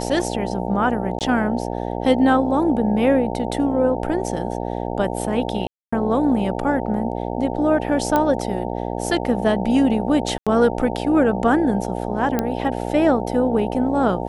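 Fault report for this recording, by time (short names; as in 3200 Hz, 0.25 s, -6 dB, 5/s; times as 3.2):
buzz 60 Hz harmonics 15 -26 dBFS
1.19–1.21 gap 18 ms
5.67–5.92 gap 0.255 s
8.16 pop -6 dBFS
10.38–10.47 gap 86 ms
12.39 pop -7 dBFS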